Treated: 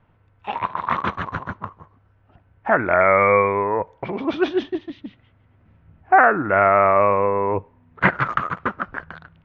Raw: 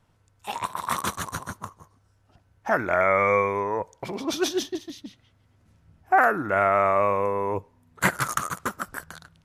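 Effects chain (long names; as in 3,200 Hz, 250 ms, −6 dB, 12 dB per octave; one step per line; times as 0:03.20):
low-pass filter 2,700 Hz 24 dB per octave
level +5.5 dB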